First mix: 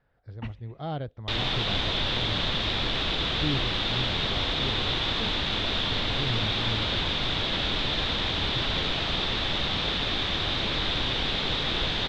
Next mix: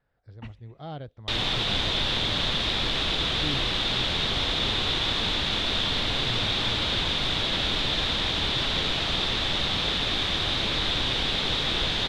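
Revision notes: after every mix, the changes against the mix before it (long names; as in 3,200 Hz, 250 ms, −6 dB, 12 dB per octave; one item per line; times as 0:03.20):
speech −5.0 dB
master: remove high-frequency loss of the air 89 metres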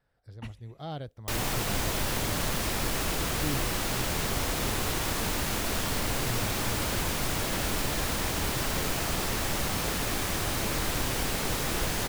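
speech: remove low-pass filter 3,700 Hz 12 dB per octave
background: remove low-pass with resonance 3,600 Hz, resonance Q 6.9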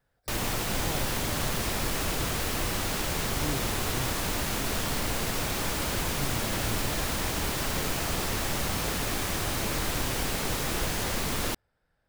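background: entry −1.00 s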